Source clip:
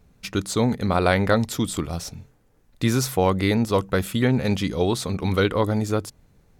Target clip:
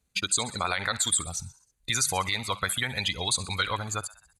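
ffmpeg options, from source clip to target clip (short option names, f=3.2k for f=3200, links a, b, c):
-filter_complex "[0:a]lowpass=f=11k:w=0.5412,lowpass=f=11k:w=1.3066,bandreject=f=5.4k:w=5.5,afftdn=nr=18:nf=-34,highpass=40,asubboost=boost=3.5:cutoff=150,acrossover=split=760[a][b];[a]acompressor=threshold=-33dB:ratio=5[c];[b]asplit=6[d][e][f][g][h][i];[e]adelay=96,afreqshift=54,volume=-18.5dB[j];[f]adelay=192,afreqshift=108,volume=-22.9dB[k];[g]adelay=288,afreqshift=162,volume=-27.4dB[l];[h]adelay=384,afreqshift=216,volume=-31.8dB[m];[i]adelay=480,afreqshift=270,volume=-36.2dB[n];[d][j][k][l][m][n]amix=inputs=6:normalize=0[o];[c][o]amix=inputs=2:normalize=0,crystalizer=i=8:c=0,atempo=1.5,alimiter=limit=-10.5dB:level=0:latency=1:release=50,volume=-3dB"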